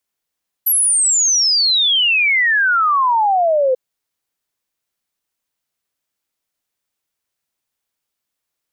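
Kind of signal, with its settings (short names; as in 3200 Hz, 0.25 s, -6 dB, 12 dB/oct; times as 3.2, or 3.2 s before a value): log sweep 12000 Hz -> 500 Hz 3.09 s -11.5 dBFS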